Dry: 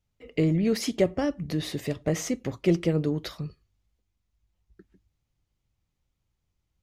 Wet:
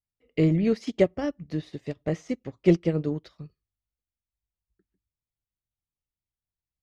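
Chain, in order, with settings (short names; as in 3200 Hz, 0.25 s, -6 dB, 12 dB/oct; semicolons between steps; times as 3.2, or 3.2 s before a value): LPF 6200 Hz 12 dB/oct; in parallel at +1 dB: limiter -21 dBFS, peak gain reduction 11.5 dB; on the sum: upward expander 2.5:1, over -32 dBFS; gain +1.5 dB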